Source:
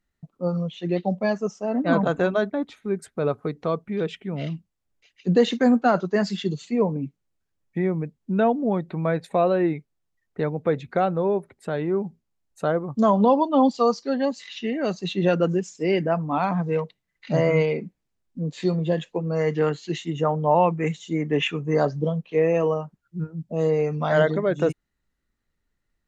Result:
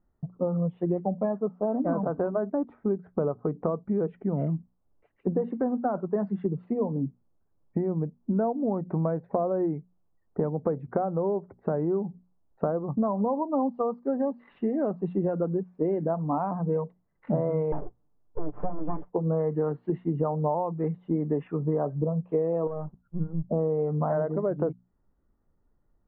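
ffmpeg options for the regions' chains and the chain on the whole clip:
-filter_complex "[0:a]asettb=1/sr,asplit=3[s0][s1][s2];[s0]atrim=end=17.724[s3];[s1]atrim=start=17.72:end=19.1,asetpts=PTS-STARTPTS,afade=t=in:d=0.004:c=qsin,afade=t=out:st=1.376:d=0.004:c=qsin,aeval=exprs='abs(val(0))':c=same,aecho=1:1:6.8:0.55,atrim=end_sample=60858[s4];[s2]atrim=start=19.096[s5];[s3][s4]acrossfade=d=0.004:c1=hsin:c2=qsin[s6];[s6][s5]acrossfade=d=0.004:c1=qsin:c2=hsin,asettb=1/sr,asplit=3[s7][s8][s9];[s7]atrim=end=22.674[s10];[s8]atrim=start=22.67:end=23.49,asetpts=PTS-STARTPTS,afade=t=in:d=0.004:c=qsin,afade=t=out:st=0.816:d=0.004:c=qsin,aeval=exprs='if(lt(val(0),0),0.447*val(0),val(0))':c=same,asubboost=boost=9:cutoff=190,acompressor=threshold=0.0141:ratio=1.5:attack=3.2:release=140:knee=1:detection=peak[s11];[s9]atrim=start=23.486[s12];[s10][s11]acrossfade=d=0.004:c1=hsin:c2=qsin[s13];[s13][s12]acrossfade=d=0.004:c1=qsin:c2=hsin,acompressor=threshold=0.0282:ratio=12,lowpass=f=1100:w=0.5412,lowpass=f=1100:w=1.3066,bandreject=f=60:t=h:w=6,bandreject=f=120:t=h:w=6,bandreject=f=180:t=h:w=6,bandreject=f=240:t=h:w=6,volume=2.51"

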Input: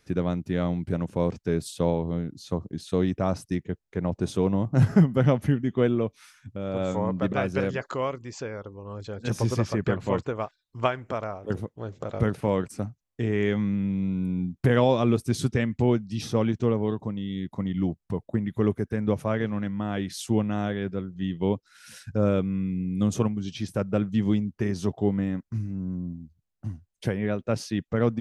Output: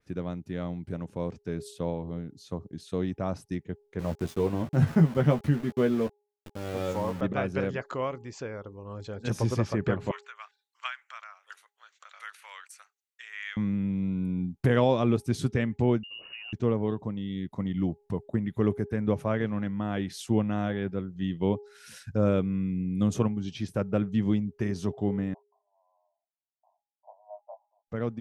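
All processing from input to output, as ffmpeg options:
-filter_complex "[0:a]asettb=1/sr,asplit=3[s0][s1][s2];[s0]atrim=end=3.994[s3];[s1]atrim=start=3.99:end=7.21,asetpts=PTS-STARTPTS,afade=t=in:d=0.004:c=qsin,afade=t=out:st=3.216:d=0.004:c=qsin,aeval=exprs='val(0)*gte(abs(val(0)),0.0178)':c=same,asplit=2[s4][s5];[s5]adelay=13,volume=0.501[s6];[s4][s6]amix=inputs=2:normalize=0,atrim=end_sample=142002[s7];[s2]atrim=start=7.206[s8];[s3][s7]acrossfade=d=0.004:c1=hsin:c2=qsin[s9];[s9][s8]acrossfade=d=0.004:c1=qsin:c2=hsin,asettb=1/sr,asplit=3[s10][s11][s12];[s10]atrim=end=10.114[s13];[s11]atrim=start=10.11:end=13.57,asetpts=PTS-STARTPTS,afade=t=in:d=0.004:c=qsin,afade=t=out:st=3.456:d=0.004:c=qsin,highpass=f=1400:w=0.5412,highpass=f=1400:w=1.3066,bandreject=f=5100:w=13[s14];[s12]atrim=start=13.566[s15];[s13][s14]acrossfade=d=0.004:c1=hsin:c2=qsin[s16];[s16][s15]acrossfade=d=0.004:c1=qsin:c2=hsin,asettb=1/sr,asplit=3[s17][s18][s19];[s17]atrim=end=16.034[s20];[s18]atrim=start=16.03:end=16.53,asetpts=PTS-STARTPTS,afade=t=in:d=0.004:c=qsin,afade=t=out:st=0.496:d=0.004:c=qsin,acompressor=threshold=0.0178:ratio=8:attack=3.2:release=140:knee=1:detection=peak,lowpass=f=2600:t=q:w=0.5098,lowpass=f=2600:t=q:w=0.6013,lowpass=f=2600:t=q:w=0.9,lowpass=f=2600:t=q:w=2.563,afreqshift=-3000[s21];[s19]atrim=start=16.526[s22];[s20][s21]acrossfade=d=0.004:c1=hsin:c2=qsin[s23];[s23][s22]acrossfade=d=0.004:c1=qsin:c2=hsin,asettb=1/sr,asplit=3[s24][s25][s26];[s24]atrim=end=25.344[s27];[s25]atrim=start=25.34:end=27.87,asetpts=PTS-STARTPTS,afade=t=in:d=0.004:c=qsin,afade=t=out:st=2.526:d=0.004:c=qsin,asuperpass=centerf=790:order=12:qfactor=2,asplit=2[s28][s29];[s29]adelay=18,volume=0.473[s30];[s28][s30]amix=inputs=2:normalize=0,atrim=end_sample=111573[s31];[s26]atrim=start=27.866[s32];[s27][s31]acrossfade=d=0.004:c1=hsin:c2=qsin[s33];[s33][s32]acrossfade=d=0.004:c1=qsin:c2=hsin,bandreject=f=412.7:t=h:w=4,bandreject=f=825.4:t=h:w=4,dynaudnorm=f=420:g=17:m=2.24,adynamicequalizer=threshold=0.00631:dfrequency=3600:dqfactor=0.7:tfrequency=3600:tqfactor=0.7:attack=5:release=100:ratio=0.375:range=2.5:mode=cutabove:tftype=highshelf,volume=0.422"

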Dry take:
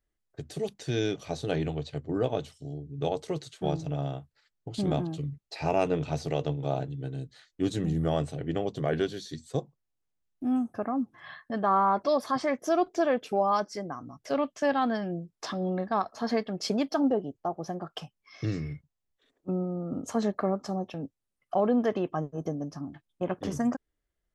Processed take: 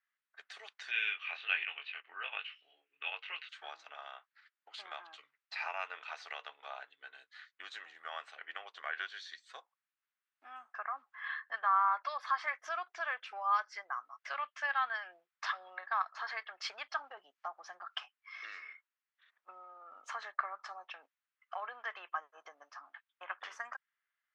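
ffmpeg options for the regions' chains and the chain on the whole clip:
-filter_complex "[0:a]asettb=1/sr,asplit=3[s0][s1][s2];[s0]atrim=end=0.914[s3];[s1]atrim=start=0.91:end=3.49,asetpts=PTS-STARTPTS,afade=t=in:d=0.004:c=qsin,afade=t=out:st=2.576:d=0.004:c=qsin,equalizer=f=680:w=1.7:g=-4.5,flanger=delay=19.5:depth=4.1:speed=1.3,lowpass=f=2700:t=q:w=7.3[s4];[s2]atrim=start=3.486[s5];[s3][s4]acrossfade=d=0.004:c1=hsin:c2=qsin[s6];[s6][s5]acrossfade=d=0.004:c1=qsin:c2=hsin,asettb=1/sr,asplit=3[s7][s8][s9];[s7]atrim=end=17.174[s10];[s8]atrim=start=17.17:end=17.96,asetpts=PTS-STARTPTS,afade=t=in:d=0.004:c=qsin,afade=t=out:st=0.786:d=0.004:c=qsin,bass=f=250:g=15,treble=f=4000:g=8,acompressor=mode=upward:threshold=0.0178:ratio=2.5:attack=3.2:release=140:knee=2.83:detection=peak[s11];[s9]atrim=start=17.956[s12];[s10][s11]acrossfade=d=0.004:c1=hsin:c2=qsin[s13];[s13][s12]acrossfade=d=0.004:c1=qsin:c2=hsin,lowpass=1900,acompressor=threshold=0.0282:ratio=2,highpass=f=1300:w=0.5412,highpass=f=1300:w=1.3066,volume=2.99"

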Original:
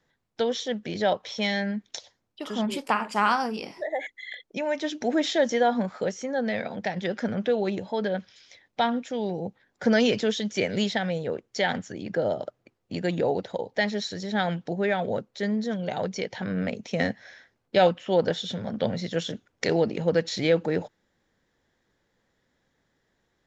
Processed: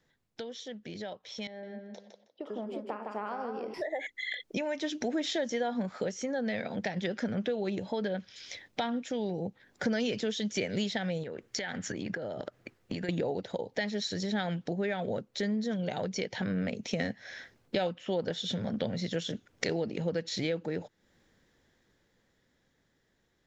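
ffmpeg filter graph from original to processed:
-filter_complex "[0:a]asettb=1/sr,asplit=3[s0][s1][s2];[s0]atrim=end=1.474[s3];[s1]atrim=start=1.47:end=3.74,asetpts=PTS-STARTPTS,afade=t=in:d=0.004:c=qsin,afade=t=out:st=2.266:d=0.004:c=qsin,bandpass=f=510:t=q:w=1.6,aecho=1:1:158|316|474:0.447|0.0893|0.0179,atrim=end_sample=100107[s4];[s2]atrim=start=3.736[s5];[s3][s4]acrossfade=d=0.004:c1=hsin:c2=qsin[s6];[s6][s5]acrossfade=d=0.004:c1=qsin:c2=hsin,asettb=1/sr,asplit=3[s7][s8][s9];[s7]atrim=end=11.234[s10];[s8]atrim=start=11.23:end=13.09,asetpts=PTS-STARTPTS,afade=t=in:d=0.004:c=qsin,afade=t=out:st=1.856:d=0.004:c=qsin,acompressor=threshold=0.0158:ratio=10:attack=3.2:release=140:knee=1:detection=peak,equalizer=f=1700:t=o:w=1:g=6[s11];[s9]atrim=start=13.086[s12];[s10][s11]acrossfade=d=0.004:c1=hsin:c2=qsin[s13];[s13][s12]acrossfade=d=0.004:c1=qsin:c2=hsin,acompressor=threshold=0.00794:ratio=3,equalizer=f=920:w=0.88:g=-4,dynaudnorm=f=290:g=17:m=2.82"

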